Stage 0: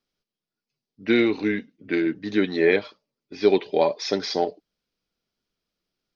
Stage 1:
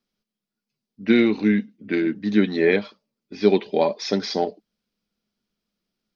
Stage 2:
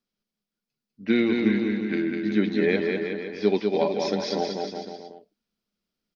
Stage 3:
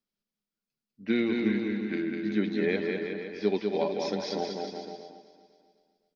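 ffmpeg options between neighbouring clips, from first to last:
ffmpeg -i in.wav -af "equalizer=frequency=210:width_type=o:width=0.32:gain=12" out.wav
ffmpeg -i in.wav -af "aecho=1:1:200|370|514.5|637.3|741.7:0.631|0.398|0.251|0.158|0.1,volume=-5dB" out.wav
ffmpeg -i in.wav -af "aecho=1:1:254|508|762|1016|1270:0.168|0.0839|0.042|0.021|0.0105,volume=-5dB" out.wav

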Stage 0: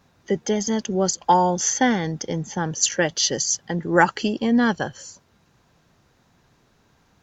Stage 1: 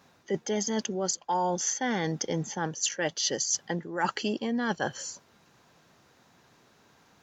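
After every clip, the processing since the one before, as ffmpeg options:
ffmpeg -i in.wav -af "highpass=frequency=260:poles=1,areverse,acompressor=threshold=-27dB:ratio=16,areverse,volume=2dB" out.wav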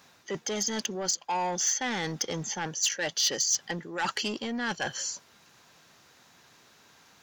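ffmpeg -i in.wav -filter_complex "[0:a]acrossover=split=6900[link_01][link_02];[link_02]acompressor=threshold=-49dB:ratio=4:attack=1:release=60[link_03];[link_01][link_03]amix=inputs=2:normalize=0,asoftclip=type=tanh:threshold=-25dB,tiltshelf=frequency=1200:gain=-5,volume=2.5dB" out.wav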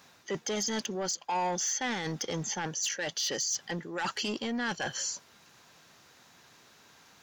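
ffmpeg -i in.wav -af "alimiter=level_in=0.5dB:limit=-24dB:level=0:latency=1:release=10,volume=-0.5dB" out.wav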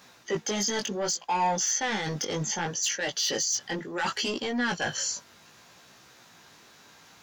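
ffmpeg -i in.wav -af "flanger=delay=15.5:depth=5.2:speed=0.67,volume=7dB" out.wav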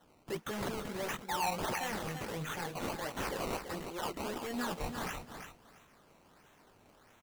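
ffmpeg -i in.wav -af "acrusher=samples=18:mix=1:aa=0.000001:lfo=1:lforange=18:lforate=1.5,aecho=1:1:335|670|1005:0.398|0.0717|0.0129,volume=-9dB" out.wav

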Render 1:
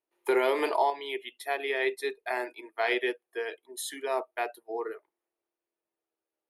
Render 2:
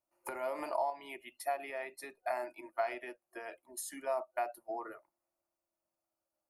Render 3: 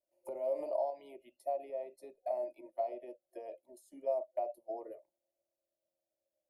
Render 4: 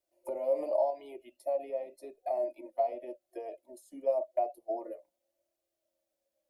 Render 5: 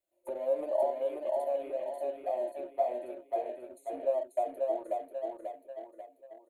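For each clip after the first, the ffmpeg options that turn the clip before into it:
ffmpeg -i in.wav -af "bass=frequency=250:gain=14,treble=frequency=4000:gain=7,acompressor=threshold=-32dB:ratio=6,superequalizer=7b=0.355:8b=3.16:9b=2.24:10b=2.24:13b=0.251,volume=-6.5dB" out.wav
ffmpeg -i in.wav -filter_complex "[0:a]acrossover=split=1900[link_01][link_02];[link_01]lowpass=frequency=560:width_type=q:width=4.9[link_03];[link_02]acompressor=threshold=-59dB:ratio=4[link_04];[link_03][link_04]amix=inputs=2:normalize=0,volume=-6.5dB" out.wav
ffmpeg -i in.wav -af "flanger=delay=2.4:depth=1.8:regen=-26:speed=0.88:shape=triangular,volume=8.5dB" out.wav
ffmpeg -i in.wav -filter_complex "[0:a]aecho=1:1:539|1078|1617|2156|2695|3234:0.708|0.34|0.163|0.0783|0.0376|0.018,asplit=2[link_01][link_02];[link_02]aeval=exprs='sgn(val(0))*max(abs(val(0))-0.00473,0)':channel_layout=same,volume=-7dB[link_03];[link_01][link_03]amix=inputs=2:normalize=0,asuperstop=centerf=5300:order=8:qfactor=2.7,volume=-3.5dB" out.wav

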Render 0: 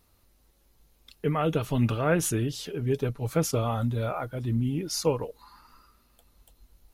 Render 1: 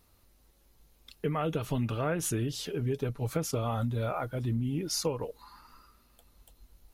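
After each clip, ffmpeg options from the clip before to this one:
ffmpeg -i in.wav -af "acompressor=threshold=-27dB:ratio=5" out.wav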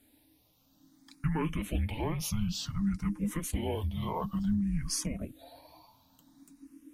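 ffmpeg -i in.wav -filter_complex "[0:a]afreqshift=-320,asplit=2[link_01][link_02];[link_02]afreqshift=0.56[link_03];[link_01][link_03]amix=inputs=2:normalize=1,volume=3dB" out.wav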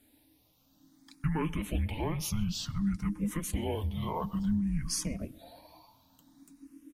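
ffmpeg -i in.wav -filter_complex "[0:a]asplit=2[link_01][link_02];[link_02]adelay=129,lowpass=frequency=3100:poles=1,volume=-22dB,asplit=2[link_03][link_04];[link_04]adelay=129,lowpass=frequency=3100:poles=1,volume=0.53,asplit=2[link_05][link_06];[link_06]adelay=129,lowpass=frequency=3100:poles=1,volume=0.53,asplit=2[link_07][link_08];[link_08]adelay=129,lowpass=frequency=3100:poles=1,volume=0.53[link_09];[link_01][link_03][link_05][link_07][link_09]amix=inputs=5:normalize=0" out.wav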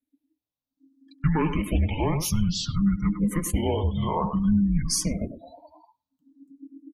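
ffmpeg -i in.wav -filter_complex "[0:a]asplit=2[link_01][link_02];[link_02]adelay=100,highpass=300,lowpass=3400,asoftclip=type=hard:threshold=-28.5dB,volume=-7dB[link_03];[link_01][link_03]amix=inputs=2:normalize=0,afftdn=noise_reduction=35:noise_floor=-46,volume=8dB" out.wav

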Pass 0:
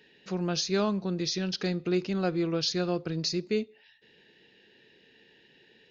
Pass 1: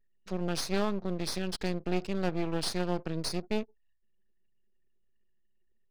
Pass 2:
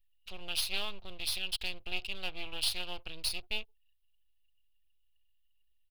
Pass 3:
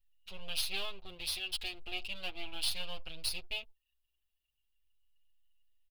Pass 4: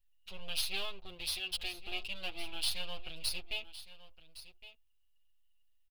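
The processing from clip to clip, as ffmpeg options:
ffmpeg -i in.wav -af "aeval=exprs='max(val(0),0)':channel_layout=same,anlmdn=0.00251" out.wav
ffmpeg -i in.wav -af "firequalizer=gain_entry='entry(100,0);entry(160,-23);entry(770,-9);entry(1800,-10);entry(2800,12);entry(6100,-7);entry(11000,7)':delay=0.05:min_phase=1" out.wav
ffmpeg -i in.wav -filter_complex "[0:a]asplit=2[link_01][link_02];[link_02]adelay=6.9,afreqshift=-0.39[link_03];[link_01][link_03]amix=inputs=2:normalize=1,volume=1dB" out.wav
ffmpeg -i in.wav -af "aecho=1:1:1113:0.168" out.wav

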